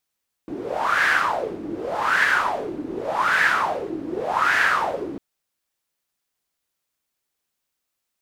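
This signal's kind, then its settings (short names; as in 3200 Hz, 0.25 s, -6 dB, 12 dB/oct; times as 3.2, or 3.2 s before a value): wind-like swept noise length 4.70 s, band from 300 Hz, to 1700 Hz, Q 6.2, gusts 4, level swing 13 dB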